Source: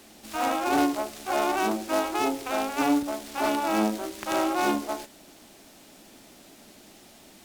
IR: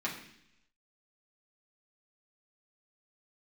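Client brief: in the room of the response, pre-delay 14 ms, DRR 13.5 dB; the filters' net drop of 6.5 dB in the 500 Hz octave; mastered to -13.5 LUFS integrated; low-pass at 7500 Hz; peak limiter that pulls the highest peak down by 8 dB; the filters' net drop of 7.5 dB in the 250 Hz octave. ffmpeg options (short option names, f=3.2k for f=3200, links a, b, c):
-filter_complex "[0:a]lowpass=7.5k,equalizer=f=250:t=o:g=-6.5,equalizer=f=500:t=o:g=-8,alimiter=limit=-21dB:level=0:latency=1,asplit=2[a][b];[1:a]atrim=start_sample=2205,adelay=14[c];[b][c]afir=irnorm=-1:irlink=0,volume=-18.5dB[d];[a][d]amix=inputs=2:normalize=0,volume=19dB"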